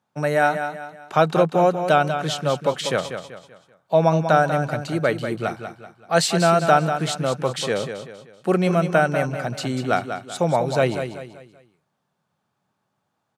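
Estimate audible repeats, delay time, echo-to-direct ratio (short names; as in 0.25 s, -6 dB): 4, 0.192 s, -8.0 dB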